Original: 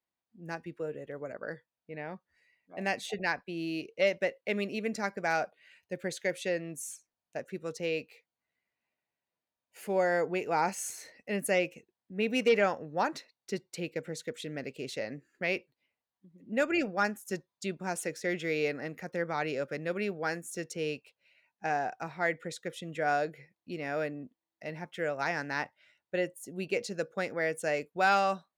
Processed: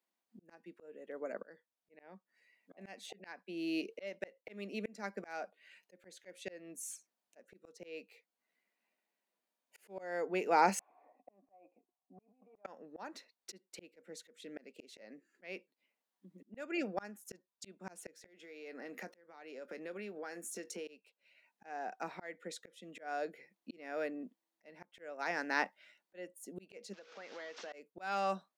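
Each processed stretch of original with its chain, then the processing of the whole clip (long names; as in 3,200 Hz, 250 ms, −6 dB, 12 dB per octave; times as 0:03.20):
0:10.79–0:12.65: parametric band 270 Hz +14.5 dB 0.49 octaves + compressor whose output falls as the input rises −31 dBFS + formant resonators in series a
0:18.26–0:20.88: parametric band 170 Hz −5.5 dB 0.29 octaves + downward compressor 16 to 1, threshold −42 dBFS + double-tracking delay 23 ms −14 dB
0:26.93–0:27.73: linear delta modulator 32 kbit/s, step −43.5 dBFS + high-pass filter 1,100 Hz 6 dB per octave + downward compressor, threshold −46 dBFS
whole clip: elliptic high-pass filter 190 Hz, stop band 40 dB; volume swells 678 ms; level +2.5 dB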